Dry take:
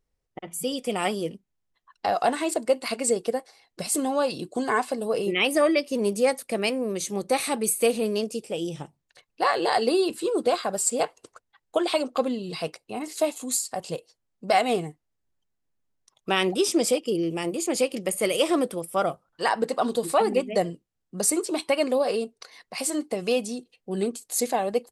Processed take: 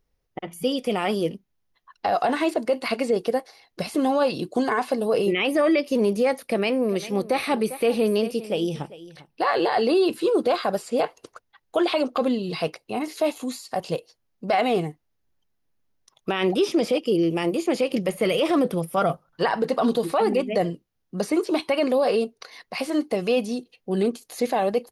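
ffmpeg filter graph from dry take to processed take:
ffmpeg -i in.wav -filter_complex "[0:a]asettb=1/sr,asplit=3[link_01][link_02][link_03];[link_01]atrim=end=6.474[link_04];[link_02]atrim=start=6.47:end=9.42,asetpts=PTS-STARTPTS,afade=type=in:duration=0.004:curve=qsin,afade=type=out:start_time=2.946:duration=0.004:curve=qsin,bandreject=frequency=6700:width=5.9,aecho=1:1:398:0.133,atrim=end_sample=130095[link_05];[link_03]atrim=start=9.416[link_06];[link_04][link_05]acrossfade=duration=0.004:curve1=hsin:curve2=qsin[link_07];[link_07][link_06]acrossfade=duration=0.004:curve1=qsin:curve2=hsin,asettb=1/sr,asplit=3[link_08][link_09][link_10];[link_08]atrim=end=17.904[link_11];[link_09]atrim=start=17.9:end=19.99,asetpts=PTS-STARTPTS,afade=type=in:duration=0.004:curve=qsin,afade=type=out:start_time=2.086:duration=0.004:curve=qsin,equalizer=frequency=160:width=4.3:gain=8.5,aphaser=in_gain=1:out_gain=1:delay=4.5:decay=0.29:speed=1.3:type=sinusoidal[link_12];[link_10]atrim=start=19.986[link_13];[link_11][link_12]acrossfade=duration=0.004:curve1=hsin:curve2=qsin[link_14];[link_14][link_13]acrossfade=duration=0.004:curve1=qsin:curve2=hsin,acrossover=split=3600[link_15][link_16];[link_16]acompressor=threshold=-42dB:ratio=4:attack=1:release=60[link_17];[link_15][link_17]amix=inputs=2:normalize=0,equalizer=frequency=7900:width_type=o:width=0.25:gain=-13.5,alimiter=limit=-18dB:level=0:latency=1:release=15,volume=5dB" out.wav

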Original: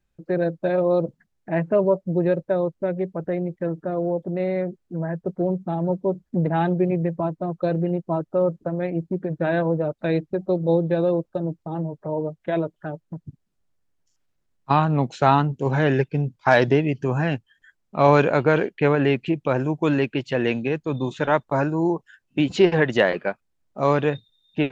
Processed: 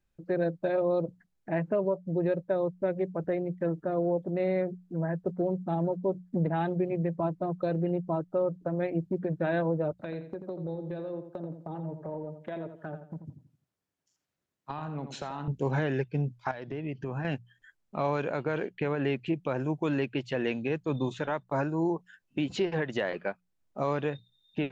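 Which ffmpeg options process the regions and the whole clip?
ffmpeg -i in.wav -filter_complex "[0:a]asettb=1/sr,asplit=3[link_01][link_02][link_03];[link_01]atrim=end=9.914[link_04];[link_02]atrim=start=9.91:end=15.48,asetpts=PTS-STARTPTS,afade=type=in:duration=0.004:curve=qsin,afade=type=out:start_time=5.566:duration=0.004:curve=qsin,highpass=110,acompressor=threshold=-29dB:ratio=10:attack=3.2:release=140:knee=1:detection=peak,asplit=2[link_05][link_06];[link_06]adelay=85,lowpass=frequency=4000:poles=1,volume=-9dB,asplit=2[link_07][link_08];[link_08]adelay=85,lowpass=frequency=4000:poles=1,volume=0.34,asplit=2[link_09][link_10];[link_10]adelay=85,lowpass=frequency=4000:poles=1,volume=0.34,asplit=2[link_11][link_12];[link_12]adelay=85,lowpass=frequency=4000:poles=1,volume=0.34[link_13];[link_05][link_07][link_09][link_11][link_13]amix=inputs=5:normalize=0,atrim=end_sample=245637[link_14];[link_03]atrim=start=15.476[link_15];[link_04][link_14]acrossfade=duration=0.004:curve1=hsin:curve2=qsin[link_16];[link_16][link_15]acrossfade=duration=0.004:curve1=qsin:curve2=hsin,asettb=1/sr,asplit=3[link_17][link_18][link_19];[link_17]atrim=end=16.514[link_20];[link_18]atrim=start=16.51:end=17.25,asetpts=PTS-STARTPTS,afade=type=in:duration=0.004:curve=qsin,afade=type=out:start_time=0.736:duration=0.004:curve=qsin,lowpass=4100,acompressor=threshold=-28dB:ratio=4:attack=3.2:release=140:knee=1:detection=peak[link_21];[link_19]atrim=start=17.246[link_22];[link_20][link_21]acrossfade=duration=0.004:curve1=hsin:curve2=qsin[link_23];[link_23][link_22]acrossfade=duration=0.004:curve1=qsin:curve2=hsin,alimiter=limit=-15dB:level=0:latency=1:release=374,bandreject=frequency=60:width_type=h:width=6,bandreject=frequency=120:width_type=h:width=6,bandreject=frequency=180:width_type=h:width=6,volume=-3.5dB" out.wav

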